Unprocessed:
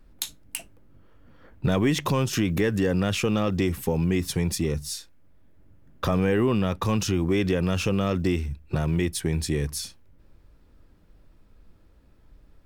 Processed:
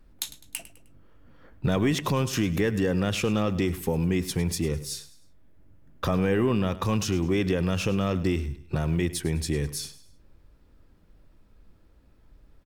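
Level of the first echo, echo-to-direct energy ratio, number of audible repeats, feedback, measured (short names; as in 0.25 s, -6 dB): -16.0 dB, -15.5 dB, 3, 38%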